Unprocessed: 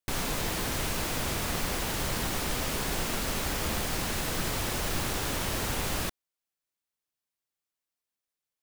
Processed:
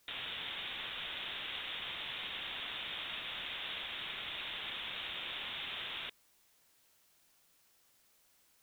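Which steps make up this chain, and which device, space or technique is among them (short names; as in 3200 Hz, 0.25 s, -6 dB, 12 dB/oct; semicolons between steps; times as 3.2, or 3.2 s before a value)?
scrambled radio voice (BPF 390–2800 Hz; inverted band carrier 4000 Hz; white noise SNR 26 dB); gain -5.5 dB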